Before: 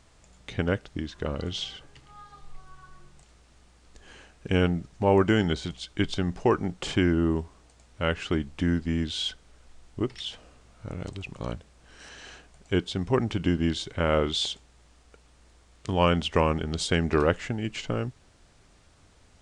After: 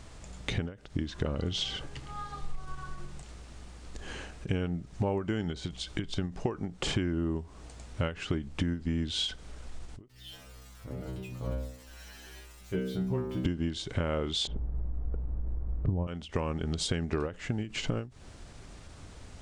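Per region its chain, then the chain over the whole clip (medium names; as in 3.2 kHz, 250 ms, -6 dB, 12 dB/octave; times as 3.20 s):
10.08–13.45 s: zero-crossing glitches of -27 dBFS + low-pass 1.4 kHz 6 dB/octave + inharmonic resonator 62 Hz, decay 0.8 s, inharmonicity 0.002
14.47–16.07 s: low-pass 1.1 kHz + tilt EQ -4 dB/octave
whole clip: bass shelf 400 Hz +4.5 dB; compression 12:1, threshold -34 dBFS; endings held to a fixed fall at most 170 dB/s; trim +7 dB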